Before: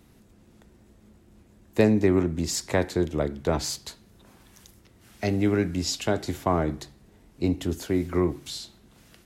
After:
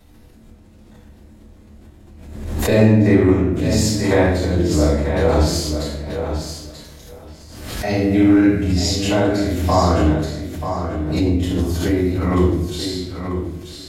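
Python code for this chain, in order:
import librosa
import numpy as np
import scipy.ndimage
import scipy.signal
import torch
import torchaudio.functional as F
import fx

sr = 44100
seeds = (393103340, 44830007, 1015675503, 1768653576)

y = fx.stretch_grains(x, sr, factor=1.5, grain_ms=161.0)
y = fx.echo_feedback(y, sr, ms=936, feedback_pct=16, wet_db=-8.0)
y = fx.room_shoebox(y, sr, seeds[0], volume_m3=240.0, walls='mixed', distance_m=6.4)
y = fx.pre_swell(y, sr, db_per_s=48.0)
y = F.gain(torch.from_numpy(y), -7.5).numpy()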